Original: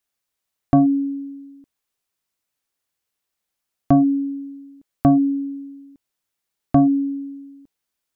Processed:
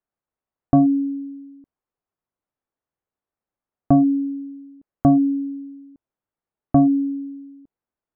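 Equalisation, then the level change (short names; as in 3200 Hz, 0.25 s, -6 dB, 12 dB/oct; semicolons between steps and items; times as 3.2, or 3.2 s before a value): LPF 1100 Hz 12 dB/oct; 0.0 dB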